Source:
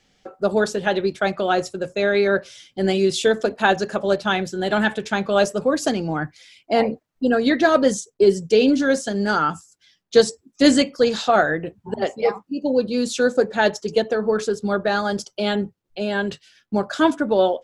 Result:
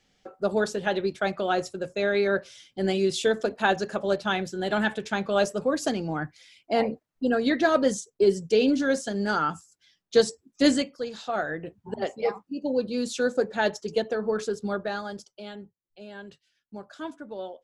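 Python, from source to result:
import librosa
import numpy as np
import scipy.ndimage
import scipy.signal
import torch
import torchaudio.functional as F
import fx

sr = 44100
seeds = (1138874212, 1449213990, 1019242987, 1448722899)

y = fx.gain(x, sr, db=fx.line((10.66, -5.5), (11.08, -16.0), (11.75, -6.5), (14.66, -6.5), (15.53, -19.0)))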